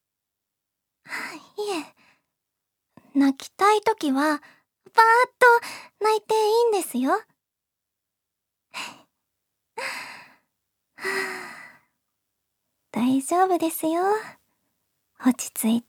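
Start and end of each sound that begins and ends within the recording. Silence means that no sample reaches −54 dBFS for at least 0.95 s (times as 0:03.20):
0:01.05–0:07.31
0:08.73–0:11.81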